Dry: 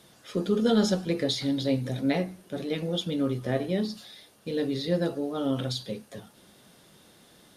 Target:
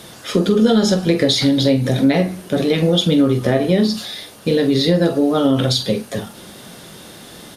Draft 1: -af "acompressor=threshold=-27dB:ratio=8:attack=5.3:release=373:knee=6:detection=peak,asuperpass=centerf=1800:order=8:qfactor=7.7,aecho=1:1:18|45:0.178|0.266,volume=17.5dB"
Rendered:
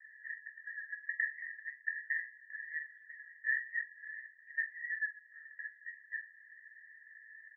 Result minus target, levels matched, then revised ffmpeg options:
2000 Hz band +18.0 dB
-af "acompressor=threshold=-27dB:ratio=8:attack=5.3:release=373:knee=6:detection=peak,aecho=1:1:18|45:0.178|0.266,volume=17.5dB"

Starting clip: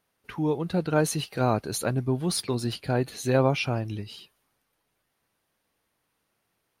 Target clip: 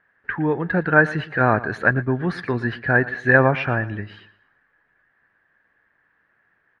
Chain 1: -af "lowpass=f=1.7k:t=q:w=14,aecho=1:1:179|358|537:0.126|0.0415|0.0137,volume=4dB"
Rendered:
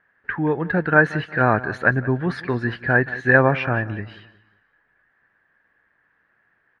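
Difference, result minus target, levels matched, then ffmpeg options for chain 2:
echo 64 ms late
-af "lowpass=f=1.7k:t=q:w=14,aecho=1:1:115|230|345:0.126|0.0415|0.0137,volume=4dB"

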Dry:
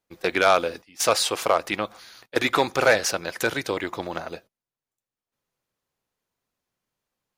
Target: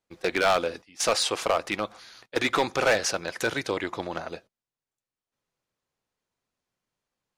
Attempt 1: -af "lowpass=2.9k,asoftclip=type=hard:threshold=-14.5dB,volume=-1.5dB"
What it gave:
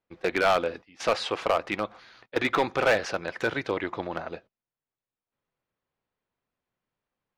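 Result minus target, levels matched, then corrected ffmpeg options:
8000 Hz band -12.0 dB
-af "lowpass=9.3k,asoftclip=type=hard:threshold=-14.5dB,volume=-1.5dB"

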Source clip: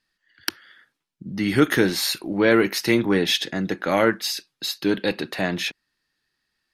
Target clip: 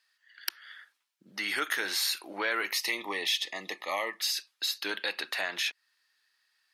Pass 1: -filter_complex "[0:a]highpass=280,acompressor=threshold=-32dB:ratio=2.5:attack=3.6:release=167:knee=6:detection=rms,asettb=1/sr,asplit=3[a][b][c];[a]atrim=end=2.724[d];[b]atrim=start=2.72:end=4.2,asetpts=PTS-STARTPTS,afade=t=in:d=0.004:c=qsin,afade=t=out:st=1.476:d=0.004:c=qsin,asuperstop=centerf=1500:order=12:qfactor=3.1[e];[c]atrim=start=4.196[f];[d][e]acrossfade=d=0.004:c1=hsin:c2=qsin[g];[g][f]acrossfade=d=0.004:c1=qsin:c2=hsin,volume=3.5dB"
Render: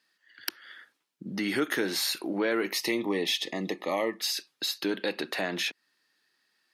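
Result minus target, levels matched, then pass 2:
250 Hz band +13.0 dB
-filter_complex "[0:a]highpass=990,acompressor=threshold=-32dB:ratio=2.5:attack=3.6:release=167:knee=6:detection=rms,asettb=1/sr,asplit=3[a][b][c];[a]atrim=end=2.724[d];[b]atrim=start=2.72:end=4.2,asetpts=PTS-STARTPTS,afade=t=in:d=0.004:c=qsin,afade=t=out:st=1.476:d=0.004:c=qsin,asuperstop=centerf=1500:order=12:qfactor=3.1[e];[c]atrim=start=4.196[f];[d][e]acrossfade=d=0.004:c1=hsin:c2=qsin[g];[g][f]acrossfade=d=0.004:c1=qsin:c2=hsin,volume=3.5dB"

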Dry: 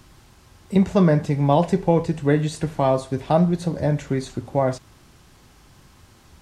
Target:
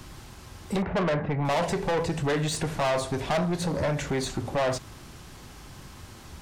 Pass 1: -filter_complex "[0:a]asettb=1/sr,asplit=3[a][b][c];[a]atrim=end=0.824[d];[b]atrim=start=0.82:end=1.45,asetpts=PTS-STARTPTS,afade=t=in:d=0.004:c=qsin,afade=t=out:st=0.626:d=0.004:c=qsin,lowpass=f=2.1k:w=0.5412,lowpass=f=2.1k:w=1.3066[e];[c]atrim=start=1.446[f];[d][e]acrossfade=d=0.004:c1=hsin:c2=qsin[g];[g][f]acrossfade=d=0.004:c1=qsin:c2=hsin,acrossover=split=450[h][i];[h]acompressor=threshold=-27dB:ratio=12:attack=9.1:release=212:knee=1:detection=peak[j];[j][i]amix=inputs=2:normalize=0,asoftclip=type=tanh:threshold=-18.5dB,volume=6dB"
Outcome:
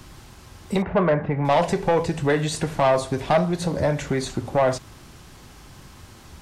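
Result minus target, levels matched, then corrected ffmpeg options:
soft clip: distortion -7 dB
-filter_complex "[0:a]asettb=1/sr,asplit=3[a][b][c];[a]atrim=end=0.824[d];[b]atrim=start=0.82:end=1.45,asetpts=PTS-STARTPTS,afade=t=in:d=0.004:c=qsin,afade=t=out:st=0.626:d=0.004:c=qsin,lowpass=f=2.1k:w=0.5412,lowpass=f=2.1k:w=1.3066[e];[c]atrim=start=1.446[f];[d][e]acrossfade=d=0.004:c1=hsin:c2=qsin[g];[g][f]acrossfade=d=0.004:c1=qsin:c2=hsin,acrossover=split=450[h][i];[h]acompressor=threshold=-27dB:ratio=12:attack=9.1:release=212:knee=1:detection=peak[j];[j][i]amix=inputs=2:normalize=0,asoftclip=type=tanh:threshold=-28.5dB,volume=6dB"

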